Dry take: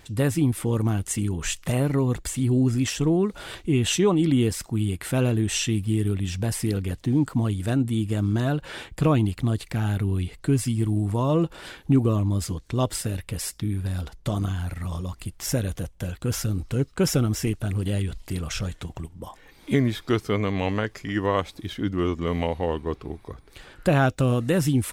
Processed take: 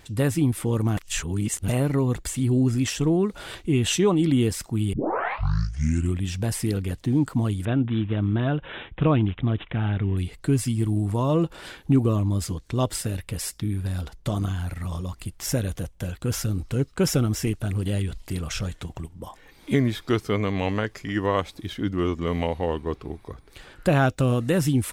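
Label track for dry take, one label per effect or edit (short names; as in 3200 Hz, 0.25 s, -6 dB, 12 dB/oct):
0.970000	1.680000	reverse
4.930000	4.930000	tape start 1.32 s
7.650000	10.170000	careless resampling rate divided by 6×, down none, up filtered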